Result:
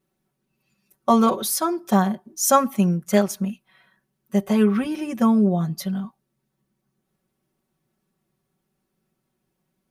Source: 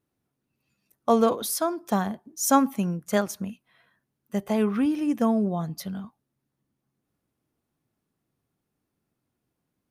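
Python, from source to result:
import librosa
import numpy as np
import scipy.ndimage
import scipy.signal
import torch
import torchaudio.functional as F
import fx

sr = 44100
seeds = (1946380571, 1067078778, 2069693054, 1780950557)

y = x + 0.94 * np.pad(x, (int(5.3 * sr / 1000.0), 0))[:len(x)]
y = F.gain(torch.from_numpy(y), 2.0).numpy()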